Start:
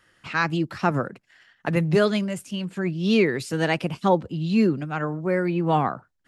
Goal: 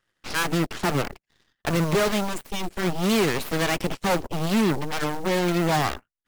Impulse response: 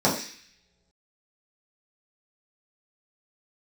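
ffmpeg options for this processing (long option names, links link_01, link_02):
-af "asoftclip=type=hard:threshold=-19.5dB,acrusher=bits=6:mode=log:mix=0:aa=0.000001,aeval=exprs='0.112*(cos(1*acos(clip(val(0)/0.112,-1,1)))-cos(1*PI/2))+0.0501*(cos(2*acos(clip(val(0)/0.112,-1,1)))-cos(2*PI/2))+0.0316*(cos(3*acos(clip(val(0)/0.112,-1,1)))-cos(3*PI/2))+0.02*(cos(4*acos(clip(val(0)/0.112,-1,1)))-cos(4*PI/2))+0.0316*(cos(8*acos(clip(val(0)/0.112,-1,1)))-cos(8*PI/2))':channel_layout=same"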